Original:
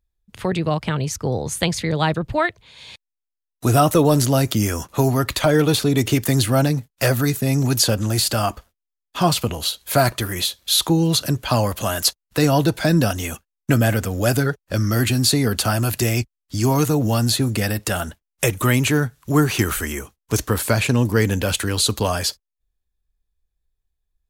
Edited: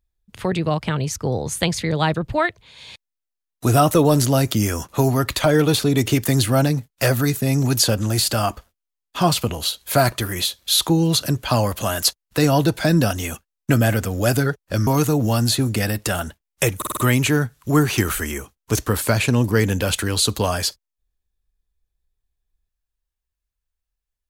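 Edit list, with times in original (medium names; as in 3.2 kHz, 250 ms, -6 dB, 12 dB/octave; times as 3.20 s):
14.87–16.68 s: delete
18.58 s: stutter 0.05 s, 5 plays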